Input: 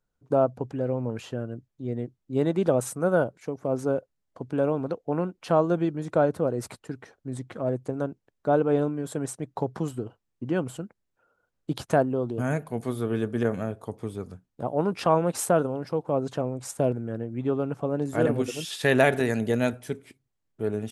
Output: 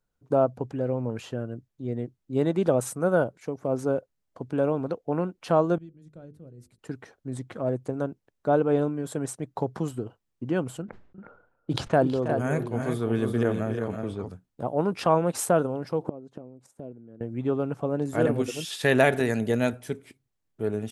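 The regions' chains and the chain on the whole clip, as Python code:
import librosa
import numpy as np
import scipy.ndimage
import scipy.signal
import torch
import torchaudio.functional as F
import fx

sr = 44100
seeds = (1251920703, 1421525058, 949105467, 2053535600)

y = fx.chain(x, sr, fx.tone_stack(knobs='10-0-1'),
    fx.hum_notches(base_hz=50, count=10), at=(5.78, 6.79))
y = fx.chain(y, sr, fx.env_lowpass(base_hz=1500.0, full_db=-23.0),
    fx.echo_multitap(ms=(323, 359), db=(-12.5, -7.0)),
    fx.sustainer(db_per_s=86.0), at=(10.82, 14.29))
y = fx.chain(y, sr, fx.gate_flip(shuts_db=-26.0, range_db=-26),
    fx.peak_eq(hz=270.0, db=12.5, octaves=2.8), at=(16.01, 17.21))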